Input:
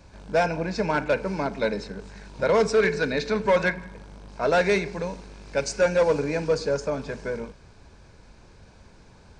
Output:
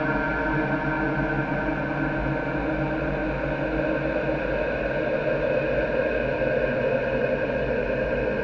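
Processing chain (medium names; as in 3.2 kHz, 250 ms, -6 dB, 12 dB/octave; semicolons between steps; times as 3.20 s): gliding tape speed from 101% -> 122%; transient shaper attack -9 dB, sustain +7 dB; Paulstretch 44×, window 0.25 s, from 0.97 s; distance through air 210 m; trim +1.5 dB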